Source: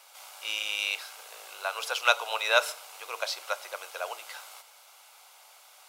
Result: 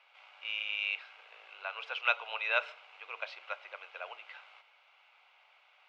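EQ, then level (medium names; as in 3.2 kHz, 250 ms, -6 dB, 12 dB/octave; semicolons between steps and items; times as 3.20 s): four-pole ladder low-pass 3 kHz, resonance 50%; bass shelf 410 Hz -3.5 dB; 0.0 dB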